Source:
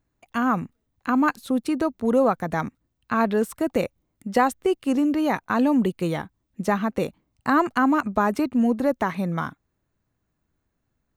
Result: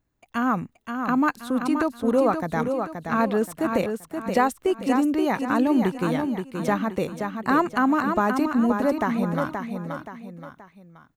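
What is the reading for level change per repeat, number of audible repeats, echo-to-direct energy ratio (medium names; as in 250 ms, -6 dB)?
-8.0 dB, 3, -5.5 dB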